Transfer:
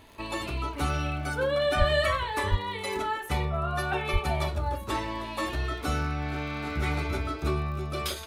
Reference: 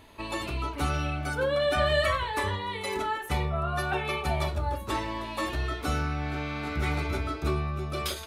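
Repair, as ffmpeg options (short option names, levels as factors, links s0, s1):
-filter_complex "[0:a]adeclick=t=4,asplit=3[s0][s1][s2];[s0]afade=t=out:st=1.78:d=0.02[s3];[s1]highpass=f=140:w=0.5412,highpass=f=140:w=1.3066,afade=t=in:st=1.78:d=0.02,afade=t=out:st=1.9:d=0.02[s4];[s2]afade=t=in:st=1.9:d=0.02[s5];[s3][s4][s5]amix=inputs=3:normalize=0,asplit=3[s6][s7][s8];[s6]afade=t=out:st=2.5:d=0.02[s9];[s7]highpass=f=140:w=0.5412,highpass=f=140:w=1.3066,afade=t=in:st=2.5:d=0.02,afade=t=out:st=2.62:d=0.02[s10];[s8]afade=t=in:st=2.62:d=0.02[s11];[s9][s10][s11]amix=inputs=3:normalize=0,asplit=3[s12][s13][s14];[s12]afade=t=out:st=4.12:d=0.02[s15];[s13]highpass=f=140:w=0.5412,highpass=f=140:w=1.3066,afade=t=in:st=4.12:d=0.02,afade=t=out:st=4.24:d=0.02[s16];[s14]afade=t=in:st=4.24:d=0.02[s17];[s15][s16][s17]amix=inputs=3:normalize=0"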